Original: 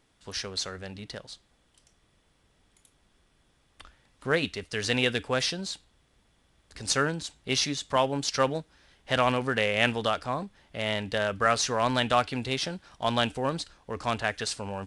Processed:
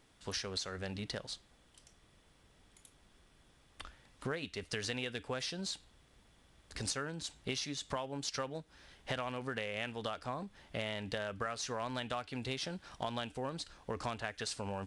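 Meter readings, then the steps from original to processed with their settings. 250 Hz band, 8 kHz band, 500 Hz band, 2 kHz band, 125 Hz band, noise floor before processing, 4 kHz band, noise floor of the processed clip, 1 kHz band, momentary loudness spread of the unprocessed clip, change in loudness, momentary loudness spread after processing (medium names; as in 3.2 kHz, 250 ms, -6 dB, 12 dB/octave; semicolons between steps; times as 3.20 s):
-10.5 dB, -9.5 dB, -12.0 dB, -12.5 dB, -9.5 dB, -68 dBFS, -10.0 dB, -67 dBFS, -13.0 dB, 13 LU, -11.5 dB, 7 LU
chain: compression 12:1, threshold -36 dBFS, peak gain reduction 18.5 dB; trim +1 dB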